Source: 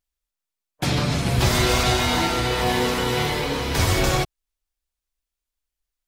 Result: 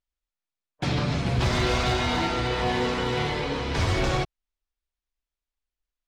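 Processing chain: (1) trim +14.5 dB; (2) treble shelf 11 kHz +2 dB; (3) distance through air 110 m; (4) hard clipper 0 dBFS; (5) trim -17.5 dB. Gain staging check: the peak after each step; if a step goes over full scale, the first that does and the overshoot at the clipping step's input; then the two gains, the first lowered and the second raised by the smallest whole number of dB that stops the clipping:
+8.0 dBFS, +8.0 dBFS, +6.5 dBFS, 0.0 dBFS, -17.5 dBFS; step 1, 6.5 dB; step 1 +7.5 dB, step 5 -10.5 dB

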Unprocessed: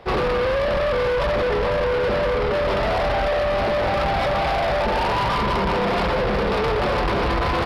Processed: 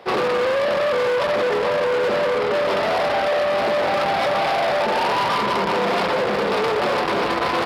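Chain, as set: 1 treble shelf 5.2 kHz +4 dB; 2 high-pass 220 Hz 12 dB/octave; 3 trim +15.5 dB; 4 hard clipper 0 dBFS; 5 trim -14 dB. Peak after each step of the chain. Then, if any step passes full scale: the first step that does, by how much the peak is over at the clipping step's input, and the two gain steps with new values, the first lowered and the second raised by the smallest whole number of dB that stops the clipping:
-17.0 dBFS, -12.5 dBFS, +3.0 dBFS, 0.0 dBFS, -14.0 dBFS; step 3, 3.0 dB; step 3 +12.5 dB, step 5 -11 dB

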